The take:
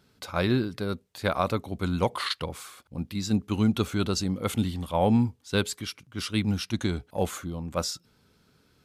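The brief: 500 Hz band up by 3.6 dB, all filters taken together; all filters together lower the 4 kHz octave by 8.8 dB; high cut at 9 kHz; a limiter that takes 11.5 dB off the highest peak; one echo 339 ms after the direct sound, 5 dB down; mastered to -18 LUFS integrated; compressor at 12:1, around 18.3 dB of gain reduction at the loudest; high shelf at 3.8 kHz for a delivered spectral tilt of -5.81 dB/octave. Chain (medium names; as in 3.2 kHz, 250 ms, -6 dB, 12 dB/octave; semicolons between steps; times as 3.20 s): low-pass 9 kHz; peaking EQ 500 Hz +4.5 dB; treble shelf 3.8 kHz -7.5 dB; peaking EQ 4 kHz -6 dB; compression 12:1, threshold -36 dBFS; peak limiter -34 dBFS; delay 339 ms -5 dB; trim +26.5 dB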